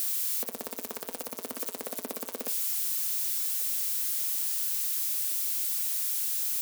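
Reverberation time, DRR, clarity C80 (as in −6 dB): 0.45 s, 11.0 dB, 24.0 dB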